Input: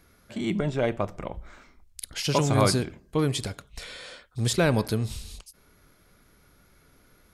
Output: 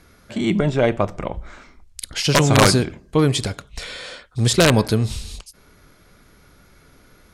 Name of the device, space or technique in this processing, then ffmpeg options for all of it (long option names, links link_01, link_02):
overflowing digital effects unit: -af "aeval=exprs='(mod(3.98*val(0)+1,2)-1)/3.98':channel_layout=same,lowpass=10000,volume=8dB"